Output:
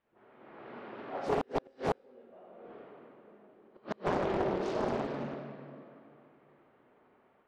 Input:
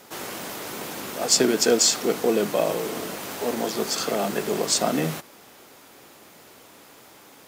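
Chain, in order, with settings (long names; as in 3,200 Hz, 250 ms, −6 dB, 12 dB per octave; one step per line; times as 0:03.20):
source passing by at 0:02.68, 36 m/s, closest 2.5 metres
high-pass filter 180 Hz 6 dB per octave
high-shelf EQ 4,100 Hz −11 dB
dense smooth reverb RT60 2.5 s, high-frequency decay 0.8×, DRR −5 dB
automatic gain control gain up to 12 dB
all-pass dispersion highs, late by 62 ms, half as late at 420 Hz
in parallel at −3 dB: soft clipping −14 dBFS, distortion −16 dB
on the sum: gate with flip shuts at −16 dBFS, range −35 dB
background noise white −72 dBFS
low-pass that shuts in the quiet parts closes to 2,500 Hz, open at −28 dBFS
high-frequency loss of the air 400 metres
highs frequency-modulated by the lows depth 0.91 ms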